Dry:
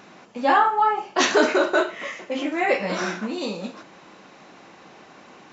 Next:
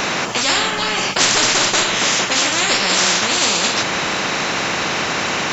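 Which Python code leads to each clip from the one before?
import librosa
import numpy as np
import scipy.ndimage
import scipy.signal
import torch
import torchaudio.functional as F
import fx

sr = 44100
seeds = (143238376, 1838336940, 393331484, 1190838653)

y = fx.high_shelf(x, sr, hz=5800.0, db=5.5)
y = fx.spectral_comp(y, sr, ratio=10.0)
y = y * librosa.db_to_amplitude(3.5)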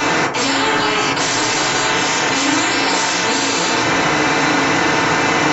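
y = fx.level_steps(x, sr, step_db=24)
y = fx.rev_fdn(y, sr, rt60_s=0.54, lf_ratio=0.9, hf_ratio=0.35, size_ms=20.0, drr_db=-8.0)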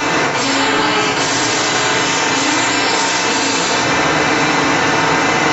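y = x + 10.0 ** (-4.0 / 20.0) * np.pad(x, (int(110 * sr / 1000.0), 0))[:len(x)]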